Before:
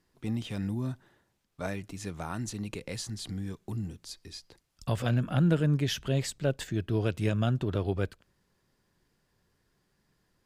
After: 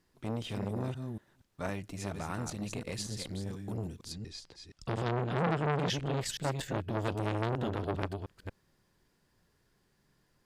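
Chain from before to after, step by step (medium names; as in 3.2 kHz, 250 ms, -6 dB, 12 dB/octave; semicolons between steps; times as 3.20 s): chunks repeated in reverse 236 ms, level -6 dB; 4.12–6.21 s: low-pass 7.4 kHz 12 dB/octave; transformer saturation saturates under 1.3 kHz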